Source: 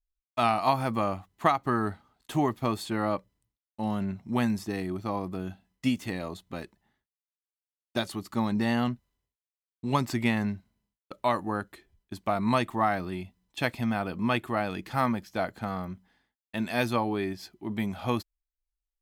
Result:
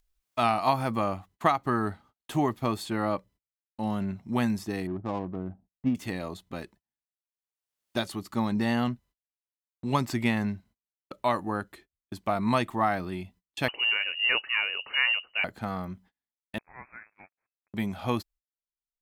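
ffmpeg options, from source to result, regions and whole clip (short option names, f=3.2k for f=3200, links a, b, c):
-filter_complex "[0:a]asettb=1/sr,asplit=3[a][b][c];[a]atrim=end=4.874[d];[b]atrim=start=4.87:end=5.95,asetpts=PTS-STARTPTS,afade=t=in:d=0.004:c=qsin,afade=t=out:st=1.076:d=0.004:c=qsin,lowpass=1.2k,adynamicsmooth=sensitivity=6:basefreq=610[e];[c]atrim=start=5.946[f];[d][e]acrossfade=d=0.004:c1=hsin:c2=qsin[g];[g][f]acrossfade=d=0.004:c1=qsin:c2=hsin,asettb=1/sr,asplit=3[h][i][j];[h]atrim=end=13.684[k];[i]atrim=start=13.68:end=15.44,asetpts=PTS-STARTPTS,afade=t=in:d=0.004:c=qsin,afade=t=out:st=1.756:d=0.004:c=qsin,lowshelf=f=86:g=10.5,lowpass=f=2.6k:t=q:w=0.5098,lowpass=f=2.6k:t=q:w=0.6013,lowpass=f=2.6k:t=q:w=0.9,lowpass=f=2.6k:t=q:w=2.563,afreqshift=-3000[l];[j]atrim=start=15.436[m];[k][l]acrossfade=d=0.004:c1=hsin:c2=qsin[n];[n][m]acrossfade=d=0.004:c1=qsin:c2=hsin,asettb=1/sr,asplit=3[o][p][q];[o]atrim=end=16.584[r];[p]atrim=start=16.58:end=17.74,asetpts=PTS-STARTPTS,afade=t=in:d=0.004:c=qsin,afade=t=out:st=1.156:d=0.004:c=qsin,aderivative,aeval=exprs='val(0)*gte(abs(val(0)),0.00501)':c=same,lowpass=f=2.2k:t=q:w=0.5098,lowpass=f=2.2k:t=q:w=0.6013,lowpass=f=2.2k:t=q:w=0.9,lowpass=f=2.2k:t=q:w=2.563,afreqshift=-2600[s];[q]atrim=start=17.736[t];[r][s]acrossfade=d=0.004:c1=hsin:c2=qsin[u];[u][t]acrossfade=d=0.004:c1=qsin:c2=hsin,agate=range=-33dB:threshold=-54dB:ratio=16:detection=peak,acompressor=mode=upward:threshold=-42dB:ratio=2.5"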